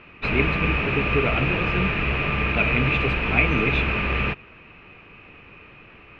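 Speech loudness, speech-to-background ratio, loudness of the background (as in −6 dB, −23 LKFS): −26.0 LKFS, −3.0 dB, −23.0 LKFS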